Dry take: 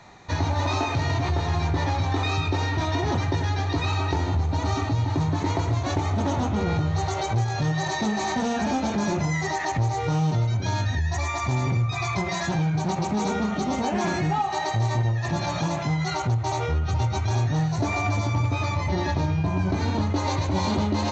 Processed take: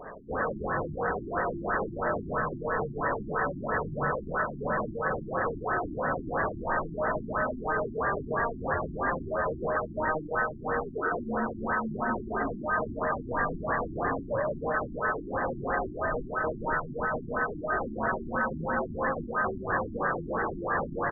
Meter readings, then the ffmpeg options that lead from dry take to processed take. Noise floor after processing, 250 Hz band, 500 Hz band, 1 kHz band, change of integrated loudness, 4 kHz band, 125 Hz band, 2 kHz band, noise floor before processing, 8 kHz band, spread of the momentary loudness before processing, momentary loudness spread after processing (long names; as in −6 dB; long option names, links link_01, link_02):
−41 dBFS, −8.5 dB, 0.0 dB, −2.5 dB, −5.5 dB, below −40 dB, −17.0 dB, +1.5 dB, −29 dBFS, can't be measured, 2 LU, 2 LU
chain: -filter_complex "[0:a]highpass=140,acrossover=split=340[link_01][link_02];[link_01]acompressor=threshold=-35dB:ratio=6[link_03];[link_02]alimiter=limit=-22.5dB:level=0:latency=1:release=153[link_04];[link_03][link_04]amix=inputs=2:normalize=0,aeval=exprs='0.106*sin(PI/2*2.82*val(0)/0.106)':channel_layout=same,aeval=exprs='val(0)*sin(2*PI*1400*n/s)':channel_layout=same,aecho=1:1:516|1032|1548|2064|2580|3096|3612:0.316|0.187|0.11|0.0649|0.0383|0.0226|0.0133,afftfilt=real='re*lt(b*sr/1024,350*pow(2000/350,0.5+0.5*sin(2*PI*3*pts/sr)))':imag='im*lt(b*sr/1024,350*pow(2000/350,0.5+0.5*sin(2*PI*3*pts/sr)))':win_size=1024:overlap=0.75"